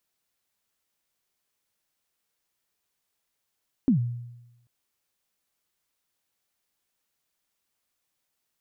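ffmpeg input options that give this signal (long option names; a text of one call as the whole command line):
ffmpeg -f lavfi -i "aevalsrc='0.178*pow(10,-3*t/0.97)*sin(2*PI*(290*0.108/log(120/290)*(exp(log(120/290)*min(t,0.108)/0.108)-1)+120*max(t-0.108,0)))':duration=0.79:sample_rate=44100" out.wav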